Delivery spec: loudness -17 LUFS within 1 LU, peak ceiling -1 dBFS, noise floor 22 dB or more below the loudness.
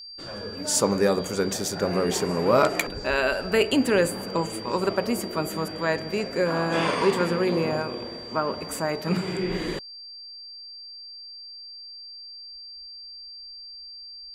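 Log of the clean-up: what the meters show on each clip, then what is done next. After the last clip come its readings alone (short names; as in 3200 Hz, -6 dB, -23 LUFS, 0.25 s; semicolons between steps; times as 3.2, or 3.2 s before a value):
steady tone 4700 Hz; tone level -39 dBFS; loudness -25.0 LUFS; peak -6.5 dBFS; loudness target -17.0 LUFS
-> notch 4700 Hz, Q 30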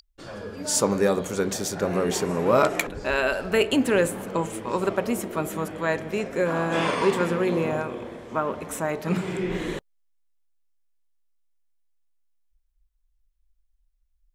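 steady tone none; loudness -25.0 LUFS; peak -6.5 dBFS; loudness target -17.0 LUFS
-> gain +8 dB; limiter -1 dBFS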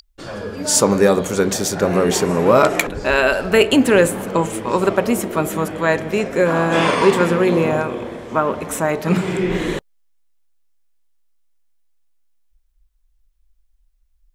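loudness -17.5 LUFS; peak -1.0 dBFS; noise floor -61 dBFS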